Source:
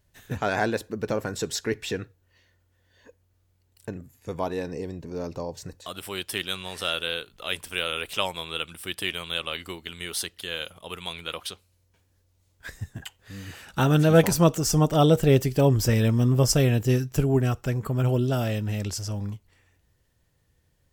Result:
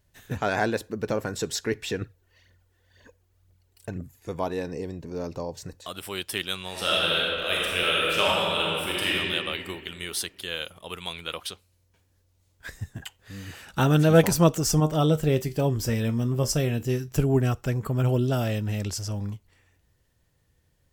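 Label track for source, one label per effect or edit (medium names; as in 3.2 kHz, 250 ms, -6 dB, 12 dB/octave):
2.010000	4.290000	phaser 2 Hz, feedback 55%
6.700000	9.120000	reverb throw, RT60 2.5 s, DRR -5.5 dB
14.800000	17.080000	feedback comb 77 Hz, decay 0.21 s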